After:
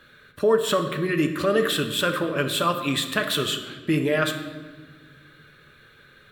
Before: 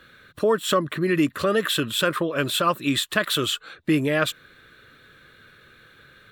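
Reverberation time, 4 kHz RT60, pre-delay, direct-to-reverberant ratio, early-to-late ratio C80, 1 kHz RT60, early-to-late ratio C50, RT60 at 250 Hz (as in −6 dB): 1.4 s, 1.0 s, 5 ms, 5.0 dB, 10.5 dB, 1.2 s, 9.0 dB, 2.1 s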